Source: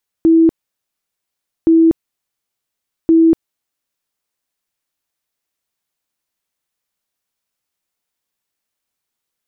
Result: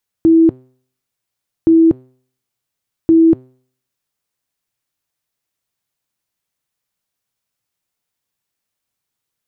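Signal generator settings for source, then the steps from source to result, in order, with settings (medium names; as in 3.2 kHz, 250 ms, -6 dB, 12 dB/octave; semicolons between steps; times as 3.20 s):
tone bursts 327 Hz, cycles 79, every 1.42 s, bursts 3, -6 dBFS
peaking EQ 120 Hz +9 dB 0.78 oct; de-hum 128.3 Hz, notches 36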